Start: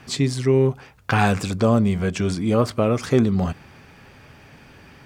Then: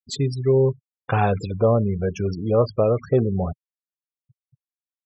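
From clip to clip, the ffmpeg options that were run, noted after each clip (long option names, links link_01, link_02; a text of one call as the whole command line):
ffmpeg -i in.wav -af "afftfilt=real='re*gte(hypot(re,im),0.0631)':imag='im*gte(hypot(re,im),0.0631)':win_size=1024:overlap=0.75,equalizer=frequency=125:width_type=o:width=1:gain=3,equalizer=frequency=250:width_type=o:width=1:gain=-7,equalizer=frequency=500:width_type=o:width=1:gain=7,equalizer=frequency=2000:width_type=o:width=1:gain=-7,equalizer=frequency=8000:width_type=o:width=1:gain=4,volume=-2dB" out.wav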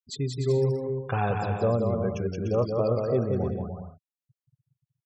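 ffmpeg -i in.wav -af "aecho=1:1:180|297|373|422.5|454.6:0.631|0.398|0.251|0.158|0.1,volume=-7dB" out.wav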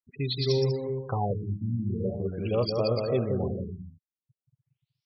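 ffmpeg -i in.wav -af "aexciter=amount=5.5:drive=4.9:freq=2300,afftfilt=real='re*lt(b*sr/1024,310*pow(6100/310,0.5+0.5*sin(2*PI*0.44*pts/sr)))':imag='im*lt(b*sr/1024,310*pow(6100/310,0.5+0.5*sin(2*PI*0.44*pts/sr)))':win_size=1024:overlap=0.75,volume=-1.5dB" out.wav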